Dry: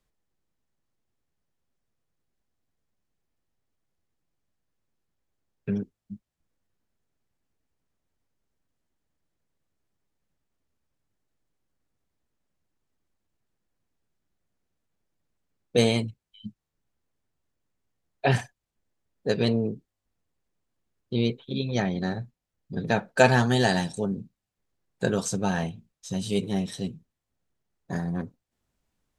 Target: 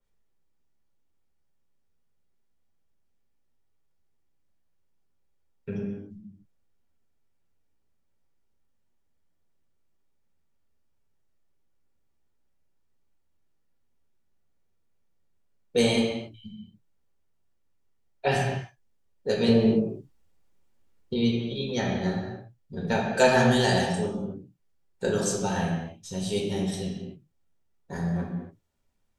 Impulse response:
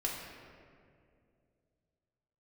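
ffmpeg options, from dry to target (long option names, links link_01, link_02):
-filter_complex "[0:a]asettb=1/sr,asplit=3[link_01][link_02][link_03];[link_01]atrim=end=19.484[link_04];[link_02]atrim=start=19.48:end=21.14,asetpts=PTS-STARTPTS,afade=type=in:duration=0.004:curve=qsin,afade=type=out:start_time=1.656:duration=0.004:curve=qsin,acontrast=69[link_05];[link_03]atrim=start=21.136[link_06];[link_04][link_05]acrossfade=duration=0.004:curve1=hsin:curve2=qsin[link_07];[link_07][link_06]acrossfade=duration=0.004:curve1=qsin:curve2=hsin[link_08];[1:a]atrim=start_sample=2205,afade=type=out:start_time=0.4:duration=0.01,atrim=end_sample=18081,asetrate=52920,aresample=44100[link_09];[link_08][link_09]afir=irnorm=-1:irlink=0,adynamicequalizer=threshold=0.00708:dfrequency=3200:dqfactor=0.7:tfrequency=3200:tqfactor=0.7:attack=5:release=100:ratio=0.375:range=2:mode=boostabove:tftype=highshelf,volume=-2dB"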